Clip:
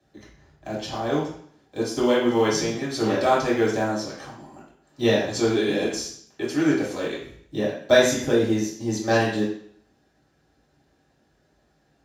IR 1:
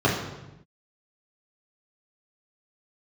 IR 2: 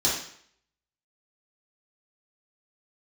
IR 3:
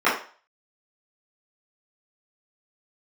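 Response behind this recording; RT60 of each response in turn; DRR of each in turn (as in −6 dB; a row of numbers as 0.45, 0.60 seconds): 2; 0.95, 0.60, 0.40 seconds; −6.5, −7.5, −13.0 decibels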